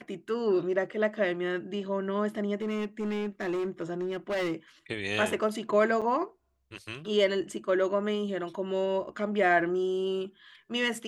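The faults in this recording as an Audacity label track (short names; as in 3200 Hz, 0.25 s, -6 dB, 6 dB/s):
2.610000	4.540000	clipped -27 dBFS
6.010000	6.020000	gap 6.7 ms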